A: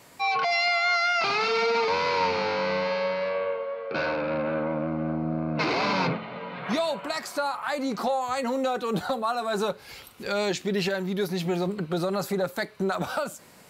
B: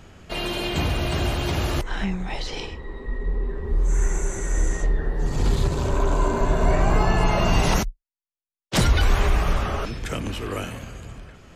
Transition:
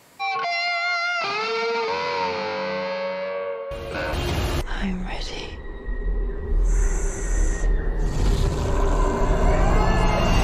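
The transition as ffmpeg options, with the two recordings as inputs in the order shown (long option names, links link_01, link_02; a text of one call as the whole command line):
ffmpeg -i cue0.wav -i cue1.wav -filter_complex "[1:a]asplit=2[link_01][link_02];[0:a]apad=whole_dur=10.43,atrim=end=10.43,atrim=end=4.132[link_03];[link_02]atrim=start=1.328:end=7.63[link_04];[link_01]atrim=start=0.91:end=1.33,asetpts=PTS-STARTPTS,volume=-11dB,afade=type=in:duration=0.004:curve=hsin,afade=type=out:start_time=0.416:duration=0.004:curve=hsin,adelay=3710[link_05];[link_03][link_04]acrossfade=duration=0.004:curve1=hsin:curve2=hsin[link_06];[link_06][link_05]amix=inputs=2:normalize=0" out.wav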